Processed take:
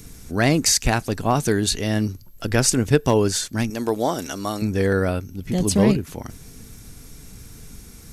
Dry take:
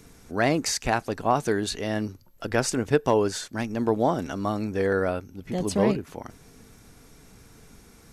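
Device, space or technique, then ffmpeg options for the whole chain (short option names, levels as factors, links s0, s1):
smiley-face EQ: -filter_complex "[0:a]asettb=1/sr,asplit=3[s0][s1][s2];[s0]atrim=end=3.704[s3];[s1]atrim=start=3.7:end=4.62,asetpts=PTS-STARTPTS,afade=t=in:d=0.004:c=qsin,afade=t=out:st=0.916:d=0.004:c=qsin,bass=f=250:g=-13,treble=f=4000:g=5[s4];[s2]atrim=start=4.616[s5];[s3][s4]acrossfade=d=0.004:c1=hsin:c2=qsin[s6];[s6][s5]acrossfade=d=0.004:c1=qsin:c2=hsin,lowshelf=f=130:g=4.5,equalizer=f=800:t=o:w=2.9:g=-8,highshelf=f=8600:g=6,volume=2.66"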